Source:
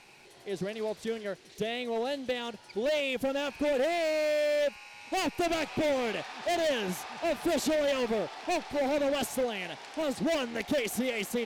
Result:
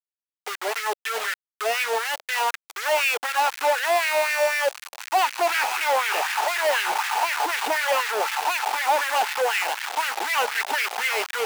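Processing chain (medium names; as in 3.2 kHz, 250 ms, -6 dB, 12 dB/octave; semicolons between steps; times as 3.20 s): cabinet simulation 390–3000 Hz, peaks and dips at 420 Hz +7 dB, 610 Hz -10 dB, 870 Hz +9 dB, 1.4 kHz +4 dB, 2.7 kHz +3 dB; companded quantiser 2-bit; LFO high-pass sine 4 Hz 600–1900 Hz; trim +2.5 dB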